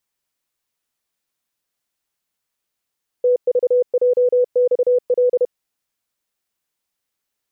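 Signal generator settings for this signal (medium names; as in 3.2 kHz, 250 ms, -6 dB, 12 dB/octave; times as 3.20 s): Morse "TVJXL" 31 wpm 495 Hz -11.5 dBFS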